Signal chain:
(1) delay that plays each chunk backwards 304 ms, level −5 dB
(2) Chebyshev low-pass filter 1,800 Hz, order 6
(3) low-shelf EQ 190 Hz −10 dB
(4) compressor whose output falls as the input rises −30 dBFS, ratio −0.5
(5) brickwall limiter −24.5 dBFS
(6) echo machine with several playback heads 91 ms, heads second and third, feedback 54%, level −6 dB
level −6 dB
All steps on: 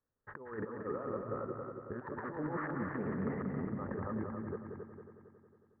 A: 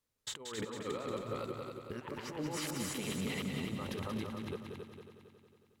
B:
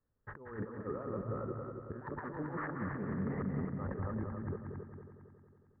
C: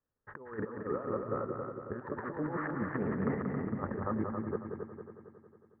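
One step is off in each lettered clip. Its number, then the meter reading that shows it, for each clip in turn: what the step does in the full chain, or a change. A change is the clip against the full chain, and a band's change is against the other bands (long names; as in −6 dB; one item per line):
2, 2 kHz band +2.0 dB
3, 125 Hz band +4.5 dB
5, average gain reduction 2.0 dB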